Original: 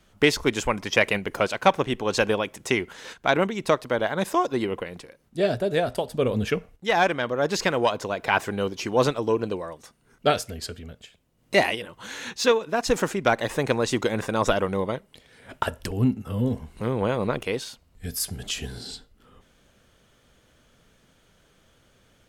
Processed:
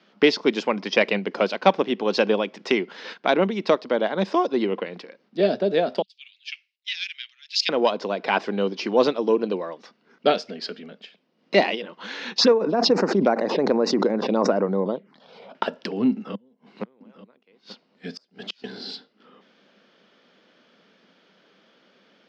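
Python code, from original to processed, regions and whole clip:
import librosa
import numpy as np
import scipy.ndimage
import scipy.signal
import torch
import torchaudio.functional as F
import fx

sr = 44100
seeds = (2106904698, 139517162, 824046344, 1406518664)

y = fx.chain(x, sr, fx.steep_highpass(hz=2400.0, slope=36),
    fx.high_shelf(hz=11000.0, db=4.0),
    fx.band_widen(depth_pct=100), at=(6.02, 7.69))
y = fx.chain(y, sr, fx.high_shelf(hz=3400.0, db=-10.5),
    fx.env_phaser(low_hz=250.0, high_hz=3300.0, full_db=-21.0),
    fx.pre_swell(db_per_s=33.0), at=(12.38, 15.55))
y = fx.chain(y, sr, fx.gate_flip(shuts_db=-20.0, range_db=-36),
    fx.echo_single(ms=886, db=-15.0), at=(16.12, 18.64))
y = scipy.signal.sosfilt(scipy.signal.cheby1(4, 1.0, [190.0, 5100.0], 'bandpass', fs=sr, output='sos'), y)
y = fx.dynamic_eq(y, sr, hz=1700.0, q=0.8, threshold_db=-37.0, ratio=4.0, max_db=-6)
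y = y * 10.0 ** (4.0 / 20.0)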